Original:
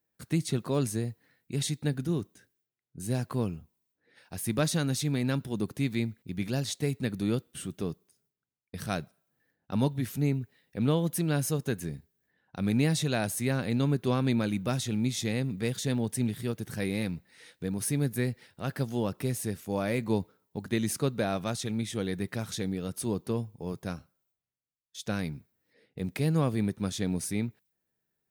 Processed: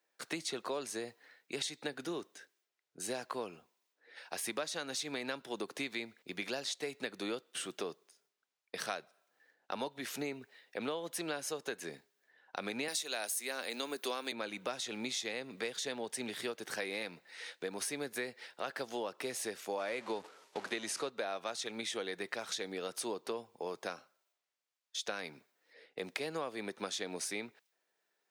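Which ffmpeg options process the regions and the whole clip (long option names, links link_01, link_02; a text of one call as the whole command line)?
ffmpeg -i in.wav -filter_complex "[0:a]asettb=1/sr,asplit=3[link_01][link_02][link_03];[link_01]atrim=end=12.884[link_04];[link_02]atrim=start=12.88:end=14.32,asetpts=PTS-STARTPTS,afade=type=in:duration=0.004:curve=qsin,afade=type=out:start_time=1.436:duration=0.004:curve=qsin,highpass=frequency=200:width=0.5412,highpass=frequency=200:width=1.3066,aemphasis=mode=production:type=75fm[link_05];[link_03]atrim=start=14.316[link_06];[link_04][link_05]acrossfade=duration=0.004:curve1=hsin:curve2=qsin[link_07];[link_07][link_06]acrossfade=duration=0.004:curve1=qsin:curve2=hsin,asettb=1/sr,asplit=3[link_08][link_09][link_10];[link_08]atrim=end=19.794[link_11];[link_09]atrim=start=19.79:end=21.1,asetpts=PTS-STARTPTS,afade=type=in:duration=0.004:curve=qsin,afade=type=out:start_time=1.306:duration=0.004:curve=qsin,aeval=exprs='val(0)+0.5*0.00944*sgn(val(0))':channel_layout=same,lowpass=frequency=12000:width=0.5412,lowpass=frequency=12000:width=1.3066,agate=range=-33dB:threshold=-39dB:ratio=3:release=100:detection=peak[link_12];[link_10]atrim=start=21.096[link_13];[link_11][link_12]acrossfade=duration=0.004:curve1=hsin:curve2=qsin[link_14];[link_14][link_13]acrossfade=duration=0.004:curve1=qsin:curve2=hsin,highpass=210,acrossover=split=410 7500:gain=0.0891 1 0.224[link_15][link_16][link_17];[link_15][link_16][link_17]amix=inputs=3:normalize=0,acompressor=threshold=-43dB:ratio=6,volume=7.5dB" out.wav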